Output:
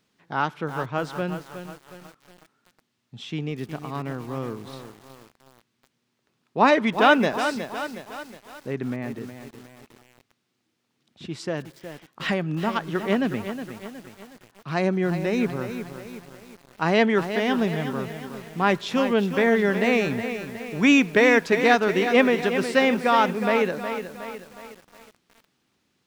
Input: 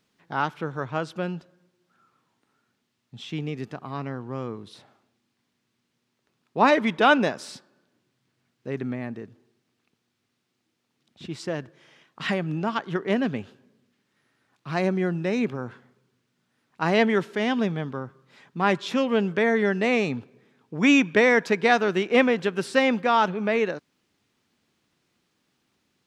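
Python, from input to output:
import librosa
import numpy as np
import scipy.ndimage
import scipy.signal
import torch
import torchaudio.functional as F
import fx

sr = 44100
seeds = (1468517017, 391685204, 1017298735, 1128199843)

y = fx.echo_crushed(x, sr, ms=365, feedback_pct=55, bits=7, wet_db=-9.0)
y = y * librosa.db_to_amplitude(1.0)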